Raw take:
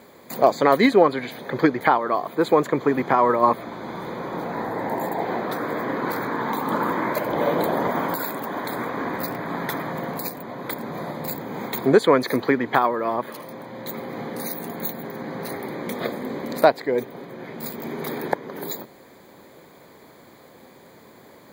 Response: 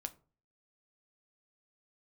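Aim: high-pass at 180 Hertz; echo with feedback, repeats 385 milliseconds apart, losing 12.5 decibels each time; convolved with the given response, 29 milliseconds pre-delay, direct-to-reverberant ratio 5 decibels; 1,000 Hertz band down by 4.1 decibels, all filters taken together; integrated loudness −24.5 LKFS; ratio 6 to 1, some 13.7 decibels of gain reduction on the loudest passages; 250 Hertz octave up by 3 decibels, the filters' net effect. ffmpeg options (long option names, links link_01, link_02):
-filter_complex "[0:a]highpass=180,equalizer=frequency=250:width_type=o:gain=5,equalizer=frequency=1000:width_type=o:gain=-5.5,acompressor=threshold=-25dB:ratio=6,aecho=1:1:385|770|1155:0.237|0.0569|0.0137,asplit=2[link_01][link_02];[1:a]atrim=start_sample=2205,adelay=29[link_03];[link_02][link_03]afir=irnorm=-1:irlink=0,volume=-2.5dB[link_04];[link_01][link_04]amix=inputs=2:normalize=0,volume=4.5dB"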